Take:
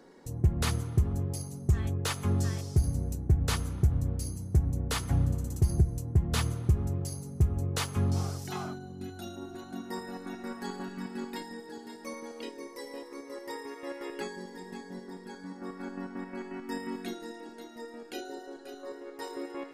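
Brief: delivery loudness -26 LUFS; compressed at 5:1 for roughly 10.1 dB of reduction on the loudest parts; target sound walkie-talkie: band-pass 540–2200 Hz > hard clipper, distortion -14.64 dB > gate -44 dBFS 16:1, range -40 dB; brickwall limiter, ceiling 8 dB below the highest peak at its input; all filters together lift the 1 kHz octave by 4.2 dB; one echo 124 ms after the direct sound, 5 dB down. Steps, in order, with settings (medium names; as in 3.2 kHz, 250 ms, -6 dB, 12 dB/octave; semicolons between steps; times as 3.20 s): peaking EQ 1 kHz +6 dB; compression 5:1, threshold -30 dBFS; peak limiter -27.5 dBFS; band-pass 540–2200 Hz; delay 124 ms -5 dB; hard clipper -38 dBFS; gate -44 dBFS 16:1, range -40 dB; trim +19 dB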